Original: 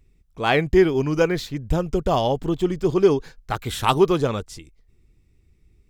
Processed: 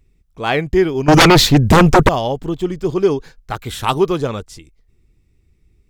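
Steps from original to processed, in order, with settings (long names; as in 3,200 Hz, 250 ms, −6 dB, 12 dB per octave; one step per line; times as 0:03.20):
0:01.08–0:02.09: sine wavefolder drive 16 dB, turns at −6 dBFS
level +1.5 dB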